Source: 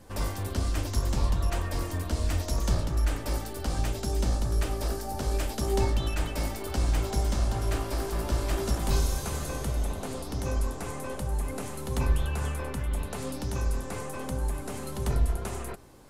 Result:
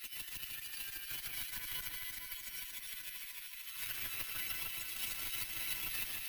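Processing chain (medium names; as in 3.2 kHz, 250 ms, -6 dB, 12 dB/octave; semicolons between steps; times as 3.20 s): high-pass 890 Hz 24 dB/octave; treble shelf 4.3 kHz -7.5 dB; compressor with a negative ratio -50 dBFS, ratio -0.5; one-sided clip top -51 dBFS; chorus voices 6, 0.22 Hz, delay 24 ms, depth 1.7 ms; wide varispeed 2.56×; echo whose repeats swap between lows and highs 152 ms, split 2.1 kHz, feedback 81%, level -2.5 dB; careless resampling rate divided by 3×, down filtered, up zero stuff; trim +7 dB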